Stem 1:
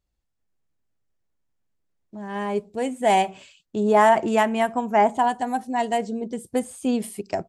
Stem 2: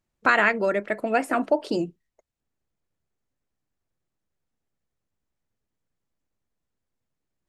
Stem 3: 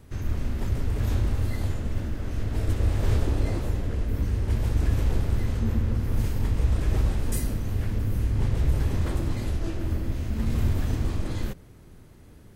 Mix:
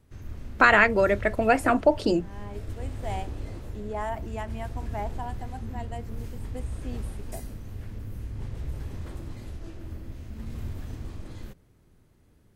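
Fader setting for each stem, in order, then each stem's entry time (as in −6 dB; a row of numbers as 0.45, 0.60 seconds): −16.5, +2.0, −11.0 decibels; 0.00, 0.35, 0.00 seconds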